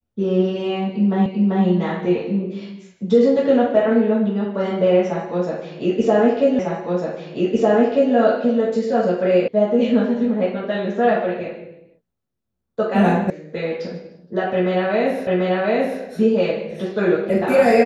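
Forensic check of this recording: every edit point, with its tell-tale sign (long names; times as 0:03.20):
0:01.26: the same again, the last 0.39 s
0:06.59: the same again, the last 1.55 s
0:09.48: cut off before it has died away
0:13.30: cut off before it has died away
0:15.27: the same again, the last 0.74 s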